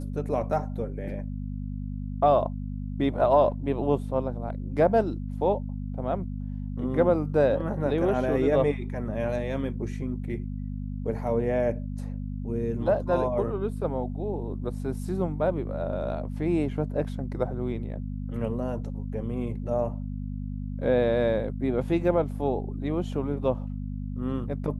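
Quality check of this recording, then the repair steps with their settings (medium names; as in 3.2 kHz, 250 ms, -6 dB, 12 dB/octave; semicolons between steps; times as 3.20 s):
hum 50 Hz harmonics 5 -33 dBFS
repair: de-hum 50 Hz, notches 5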